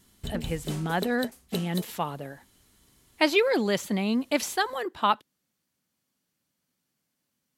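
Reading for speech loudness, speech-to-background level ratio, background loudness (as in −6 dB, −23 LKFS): −27.5 LKFS, 10.0 dB, −37.5 LKFS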